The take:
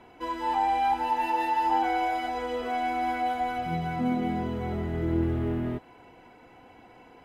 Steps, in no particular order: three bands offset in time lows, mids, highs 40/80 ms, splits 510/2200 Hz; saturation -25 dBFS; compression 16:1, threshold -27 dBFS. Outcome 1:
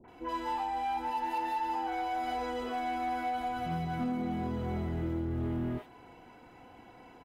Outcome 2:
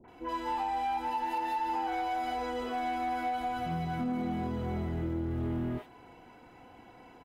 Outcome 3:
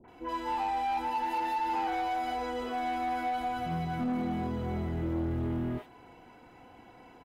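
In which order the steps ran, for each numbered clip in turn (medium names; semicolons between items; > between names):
compression > three bands offset in time > saturation; three bands offset in time > compression > saturation; three bands offset in time > saturation > compression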